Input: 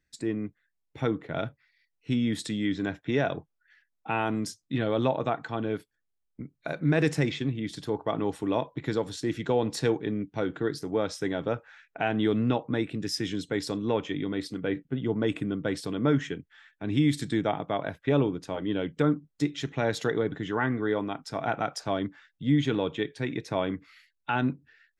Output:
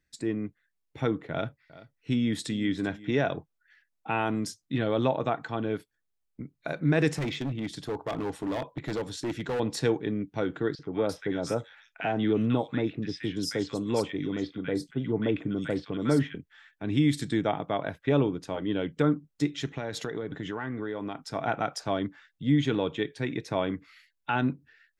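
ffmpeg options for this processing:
ffmpeg -i in.wav -filter_complex "[0:a]asettb=1/sr,asplit=3[link_01][link_02][link_03];[link_01]atrim=end=1.314[link_04];[link_02]atrim=start=1.31:end=3.15,asetpts=PTS-STARTPTS,afade=type=in:duration=0.004:curve=qsin,afade=type=out:start_time=1.836:duration=0.004:curve=qsin,aecho=1:1:387:0.119,atrim=end_sample=81144[link_05];[link_03]atrim=start=3.146[link_06];[link_04][link_05]acrossfade=duration=0.004:curve1=hsin:curve2=qsin[link_07];[link_07][link_06]acrossfade=duration=0.004:curve1=qsin:curve2=hsin,asettb=1/sr,asplit=3[link_08][link_09][link_10];[link_08]atrim=end=7.184[link_11];[link_09]atrim=start=7.18:end=9.6,asetpts=PTS-STARTPTS,afade=type=in:duration=0.004:curve=qsin,afade=type=out:start_time=2.416:duration=0.004:curve=qsin,asoftclip=type=hard:threshold=-27dB[link_12];[link_10]atrim=start=9.596[link_13];[link_11][link_12]acrossfade=duration=0.004:curve1=hsin:curve2=qsin[link_14];[link_14][link_13]acrossfade=duration=0.004:curve1=qsin:curve2=hsin,asettb=1/sr,asplit=3[link_15][link_16][link_17];[link_15]atrim=end=10.754[link_18];[link_16]atrim=start=10.75:end=16.35,asetpts=PTS-STARTPTS,afade=type=in:duration=0.004:curve=qsin,afade=type=out:start_time=5.596:duration=0.004:curve=qsin,acrossover=split=1300|4100[link_19][link_20][link_21];[link_19]adelay=40[link_22];[link_21]adelay=340[link_23];[link_22][link_20][link_23]amix=inputs=3:normalize=0,atrim=end_sample=246960[link_24];[link_17]atrim=start=16.346[link_25];[link_18][link_24]acrossfade=duration=0.004:curve1=hsin:curve2=qsin[link_26];[link_26][link_25]acrossfade=duration=0.004:curve1=qsin:curve2=hsin,asettb=1/sr,asplit=3[link_27][link_28][link_29];[link_27]atrim=end=19.684[link_30];[link_28]atrim=start=19.68:end=21.24,asetpts=PTS-STARTPTS,afade=type=in:duration=0.004:curve=qsin,afade=type=out:start_time=1.556:duration=0.004:curve=qsin,acompressor=threshold=-29dB:ratio=6:attack=3.2:release=140:knee=1:detection=peak[link_31];[link_29]atrim=start=21.236[link_32];[link_30][link_31]acrossfade=duration=0.004:curve1=hsin:curve2=qsin[link_33];[link_33][link_32]acrossfade=duration=0.004:curve1=qsin:curve2=hsin" out.wav

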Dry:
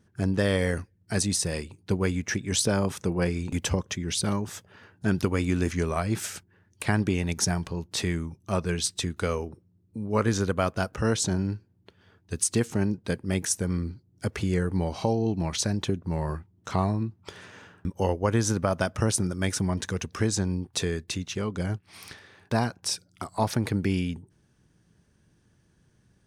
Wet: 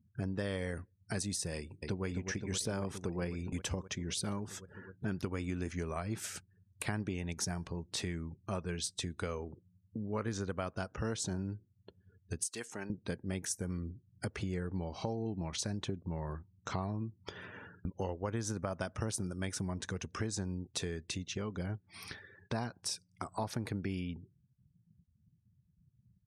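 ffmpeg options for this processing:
ffmpeg -i in.wav -filter_complex "[0:a]asplit=2[link_01][link_02];[link_02]afade=type=in:start_time=1.56:duration=0.01,afade=type=out:start_time=2.05:duration=0.01,aecho=0:1:260|520|780|1040|1300|1560|1820|2080|2340|2600|2860|3120:0.446684|0.357347|0.285877|0.228702|0.182962|0.146369|0.117095|0.0936763|0.0749411|0.0599529|0.0479623|0.0383698[link_03];[link_01][link_03]amix=inputs=2:normalize=0,asettb=1/sr,asplit=3[link_04][link_05][link_06];[link_04]atrim=end=12.434[link_07];[link_05]atrim=start=12.43:end=12.9,asetpts=PTS-STARTPTS,afade=type=in:duration=0.004:curve=qsin,afade=type=out:start_time=0.466:duration=0.004:curve=qsin,highpass=frequency=1300:poles=1[link_08];[link_06]atrim=start=12.896[link_09];[link_07][link_08]acrossfade=duration=0.004:curve1=hsin:curve2=qsin[link_10];[link_10][link_09]acrossfade=duration=0.004:curve1=qsin:curve2=hsin,afftdn=noise_reduction=34:noise_floor=-50,acompressor=threshold=-39dB:ratio=2.5" out.wav

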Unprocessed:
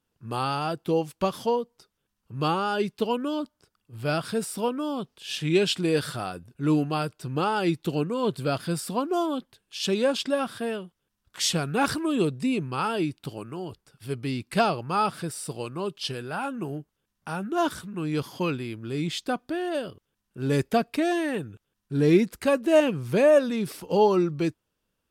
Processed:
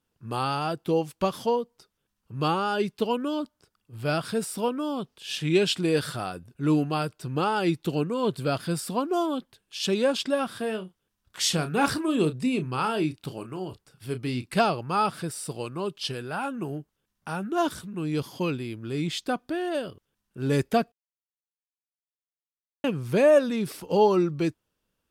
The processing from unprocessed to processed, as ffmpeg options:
ffmpeg -i in.wav -filter_complex "[0:a]asettb=1/sr,asplit=3[link_01][link_02][link_03];[link_01]atrim=end=10.474[link_04];[link_02]atrim=start=10.47:end=14.49,asetpts=PTS-STARTPTS,afade=type=in:duration=0.004:curve=qsin,afade=type=out:start_time=4.016:duration=0.004:curve=qsin,asplit=2[link_05][link_06];[link_06]adelay=32,volume=-10.5dB[link_07];[link_05][link_07]amix=inputs=2:normalize=0,atrim=end_sample=177282[link_08];[link_03]atrim=start=14.486[link_09];[link_04][link_08]acrossfade=duration=0.004:curve1=hsin:curve2=qsin[link_10];[link_10][link_09]acrossfade=duration=0.004:curve1=qsin:curve2=hsin,asettb=1/sr,asplit=3[link_11][link_12][link_13];[link_11]atrim=end=17.624[link_14];[link_12]atrim=start=17.62:end=18.77,asetpts=PTS-STARTPTS,afade=type=in:duration=0.004:curve=qsin,afade=type=out:start_time=1.146:duration=0.004:curve=qsin,equalizer=frequency=1400:width=0.96:gain=-4[link_15];[link_13]atrim=start=18.766[link_16];[link_14][link_15]acrossfade=duration=0.004:curve1=hsin:curve2=qsin[link_17];[link_17][link_16]acrossfade=duration=0.004:curve1=qsin:curve2=hsin,asplit=3[link_18][link_19][link_20];[link_18]atrim=end=20.92,asetpts=PTS-STARTPTS,afade=type=out:start_time=20.916:duration=0.004:curve=hsin[link_21];[link_19]atrim=start=20.92:end=22.84,asetpts=PTS-STARTPTS,volume=0[link_22];[link_20]atrim=start=22.84,asetpts=PTS-STARTPTS,afade=type=in:duration=0.004:curve=hsin[link_23];[link_21][link_22][link_23]concat=n=3:v=0:a=1" out.wav

